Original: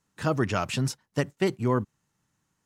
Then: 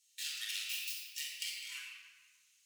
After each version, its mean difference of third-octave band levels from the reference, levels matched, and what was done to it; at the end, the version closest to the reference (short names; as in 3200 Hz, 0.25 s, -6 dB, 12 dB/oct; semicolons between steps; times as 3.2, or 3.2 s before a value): 26.5 dB: tracing distortion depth 0.2 ms; steep high-pass 2600 Hz 36 dB/oct; compressor 5:1, threshold -48 dBFS, peak gain reduction 15 dB; shoebox room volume 2000 m³, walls mixed, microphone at 4.5 m; gain +5.5 dB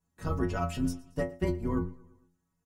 6.0 dB: octaver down 2 oct, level +1 dB; bell 3500 Hz -11 dB 2.6 oct; metallic resonator 84 Hz, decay 0.45 s, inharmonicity 0.008; feedback echo 0.114 s, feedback 55%, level -21.5 dB; gain +7.5 dB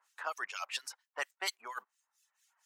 14.0 dB: HPF 800 Hz 24 dB/oct; reverb removal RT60 0.83 s; reverse; compressor 6:1, threshold -40 dBFS, peak gain reduction 13.5 dB; reverse; harmonic tremolo 4.3 Hz, depth 100%, crossover 1900 Hz; gain +12 dB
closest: second